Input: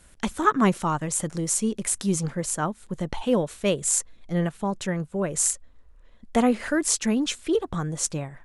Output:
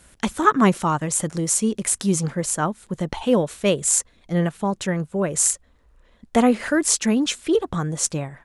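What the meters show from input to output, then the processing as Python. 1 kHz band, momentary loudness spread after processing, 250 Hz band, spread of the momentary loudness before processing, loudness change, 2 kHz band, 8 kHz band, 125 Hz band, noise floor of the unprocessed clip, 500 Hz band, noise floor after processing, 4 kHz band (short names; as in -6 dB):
+4.0 dB, 7 LU, +4.0 dB, 7 LU, +4.0 dB, +4.0 dB, +4.0 dB, +3.5 dB, -53 dBFS, +4.0 dB, -58 dBFS, +4.0 dB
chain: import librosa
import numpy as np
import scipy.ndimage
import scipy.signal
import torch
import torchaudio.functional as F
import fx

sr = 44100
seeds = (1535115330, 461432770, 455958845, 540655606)

y = fx.highpass(x, sr, hz=49.0, slope=6)
y = y * librosa.db_to_amplitude(4.0)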